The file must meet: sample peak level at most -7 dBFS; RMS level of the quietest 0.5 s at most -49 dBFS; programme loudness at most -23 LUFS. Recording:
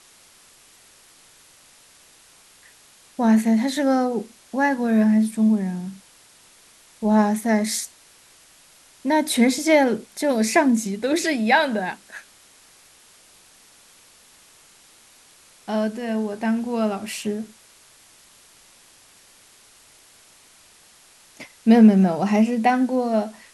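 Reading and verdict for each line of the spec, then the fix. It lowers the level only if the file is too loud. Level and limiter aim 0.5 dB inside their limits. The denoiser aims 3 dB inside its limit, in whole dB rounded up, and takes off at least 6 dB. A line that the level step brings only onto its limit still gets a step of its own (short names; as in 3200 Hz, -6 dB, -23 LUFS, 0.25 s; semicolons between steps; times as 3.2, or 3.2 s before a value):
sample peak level -4.0 dBFS: fail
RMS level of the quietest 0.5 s -52 dBFS: OK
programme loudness -20.5 LUFS: fail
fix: gain -3 dB; limiter -7.5 dBFS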